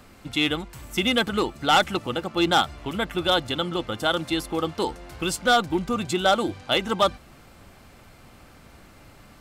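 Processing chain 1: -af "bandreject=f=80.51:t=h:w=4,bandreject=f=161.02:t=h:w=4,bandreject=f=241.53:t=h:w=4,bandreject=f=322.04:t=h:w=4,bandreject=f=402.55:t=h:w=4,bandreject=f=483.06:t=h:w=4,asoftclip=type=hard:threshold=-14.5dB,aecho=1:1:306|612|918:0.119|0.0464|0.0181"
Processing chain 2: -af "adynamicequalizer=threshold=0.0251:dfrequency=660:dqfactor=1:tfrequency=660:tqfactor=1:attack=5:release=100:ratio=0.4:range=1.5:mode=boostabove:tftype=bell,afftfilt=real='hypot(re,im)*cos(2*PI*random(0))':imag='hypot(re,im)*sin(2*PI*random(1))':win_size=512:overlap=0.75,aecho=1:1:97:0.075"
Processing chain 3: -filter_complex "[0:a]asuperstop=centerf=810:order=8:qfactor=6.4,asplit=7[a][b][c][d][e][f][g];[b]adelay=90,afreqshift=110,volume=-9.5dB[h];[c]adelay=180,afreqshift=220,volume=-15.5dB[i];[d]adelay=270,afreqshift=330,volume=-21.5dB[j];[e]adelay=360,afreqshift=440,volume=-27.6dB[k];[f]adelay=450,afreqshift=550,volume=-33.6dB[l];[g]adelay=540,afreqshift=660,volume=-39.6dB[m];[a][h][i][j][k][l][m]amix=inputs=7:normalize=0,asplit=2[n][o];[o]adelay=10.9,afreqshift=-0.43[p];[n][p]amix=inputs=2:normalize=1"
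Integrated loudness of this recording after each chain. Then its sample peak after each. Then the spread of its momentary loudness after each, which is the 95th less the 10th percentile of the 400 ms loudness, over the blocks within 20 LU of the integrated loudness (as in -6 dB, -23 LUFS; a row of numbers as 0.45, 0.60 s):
-24.5, -29.0, -27.0 LUFS; -13.5, -10.0, -9.0 dBFS; 9, 9, 8 LU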